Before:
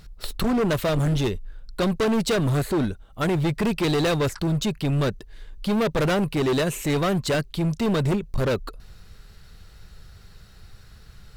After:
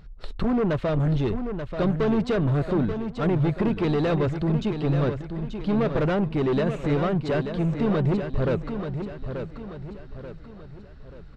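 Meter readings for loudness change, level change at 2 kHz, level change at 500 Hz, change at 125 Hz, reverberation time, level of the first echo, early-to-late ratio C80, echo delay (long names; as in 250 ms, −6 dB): −1.0 dB, −5.0 dB, −0.5 dB, +0.5 dB, no reverb audible, −8.0 dB, no reverb audible, 884 ms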